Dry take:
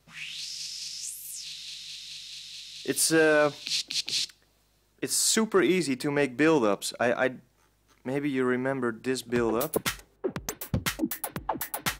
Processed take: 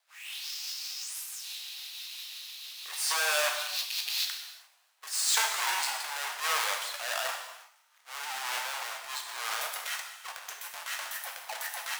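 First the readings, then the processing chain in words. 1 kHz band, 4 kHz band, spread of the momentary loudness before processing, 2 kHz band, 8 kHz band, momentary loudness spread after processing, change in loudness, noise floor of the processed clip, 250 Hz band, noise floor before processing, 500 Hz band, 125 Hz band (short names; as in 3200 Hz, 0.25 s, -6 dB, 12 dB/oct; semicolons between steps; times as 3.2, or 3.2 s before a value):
-1.0 dB, 0.0 dB, 15 LU, -2.0 dB, -2.0 dB, 14 LU, -4.5 dB, -65 dBFS, under -40 dB, -67 dBFS, -16.0 dB, under -40 dB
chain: half-waves squared off; rotary speaker horn 6 Hz; steep high-pass 760 Hz 36 dB/oct; transient shaper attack -7 dB, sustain +10 dB; non-linear reverb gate 0.39 s falling, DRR 2 dB; gain -3.5 dB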